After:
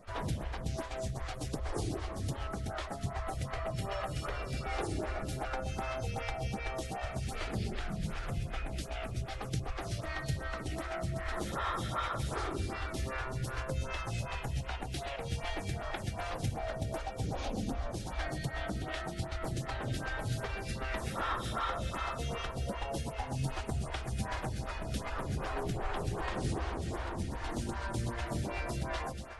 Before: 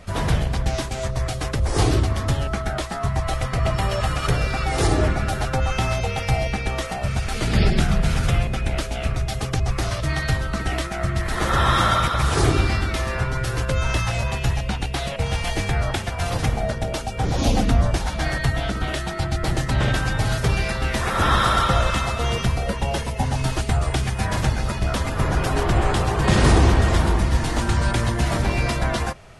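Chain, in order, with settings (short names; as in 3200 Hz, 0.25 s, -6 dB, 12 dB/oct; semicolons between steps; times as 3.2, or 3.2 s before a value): compressor, threshold -20 dBFS, peak gain reduction 9.5 dB; on a send: echo with dull and thin repeats by turns 0.121 s, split 1000 Hz, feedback 80%, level -8 dB; on the sum: photocell phaser 2.6 Hz; gain -8.5 dB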